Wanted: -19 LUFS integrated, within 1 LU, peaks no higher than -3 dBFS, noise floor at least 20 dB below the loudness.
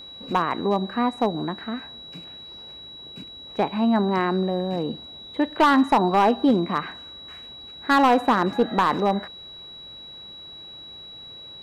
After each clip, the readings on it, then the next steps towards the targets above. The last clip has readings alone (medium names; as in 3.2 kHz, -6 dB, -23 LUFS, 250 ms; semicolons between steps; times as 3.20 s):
clipped samples 0.5%; clipping level -11.5 dBFS; steady tone 3.9 kHz; tone level -39 dBFS; loudness -22.5 LUFS; peak level -11.5 dBFS; loudness target -19.0 LUFS
-> clip repair -11.5 dBFS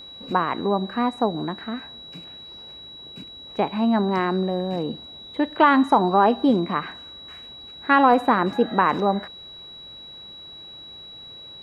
clipped samples 0.0%; steady tone 3.9 kHz; tone level -39 dBFS
-> band-stop 3.9 kHz, Q 30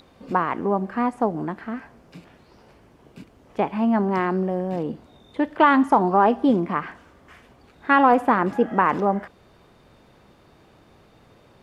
steady tone not found; loudness -21.5 LUFS; peak level -4.0 dBFS; loudness target -19.0 LUFS
-> trim +2.5 dB; peak limiter -3 dBFS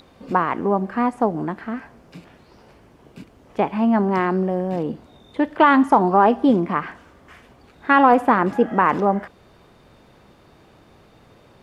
loudness -19.0 LUFS; peak level -3.0 dBFS; noise floor -52 dBFS